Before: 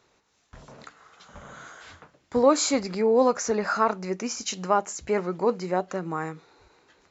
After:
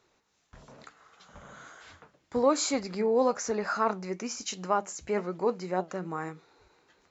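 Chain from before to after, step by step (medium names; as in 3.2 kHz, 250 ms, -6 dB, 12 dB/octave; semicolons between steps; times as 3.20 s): flange 1.1 Hz, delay 2.2 ms, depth 4.3 ms, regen +84%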